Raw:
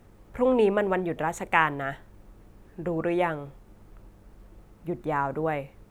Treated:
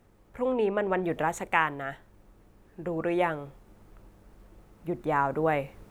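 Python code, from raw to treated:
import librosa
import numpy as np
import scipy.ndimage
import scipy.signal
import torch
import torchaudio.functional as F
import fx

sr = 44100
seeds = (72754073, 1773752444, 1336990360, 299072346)

y = fx.high_shelf(x, sr, hz=7400.0, db=-11.5, at=(0.52, 1.04))
y = fx.rider(y, sr, range_db=5, speed_s=0.5)
y = fx.low_shelf(y, sr, hz=210.0, db=-3.5)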